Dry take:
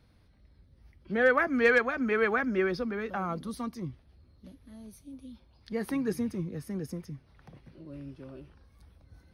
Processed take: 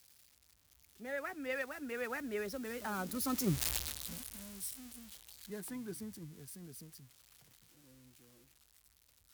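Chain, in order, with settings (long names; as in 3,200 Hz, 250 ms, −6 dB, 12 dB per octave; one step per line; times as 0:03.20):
spike at every zero crossing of −29 dBFS
source passing by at 0:03.70, 32 m/s, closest 2.7 metres
level +13.5 dB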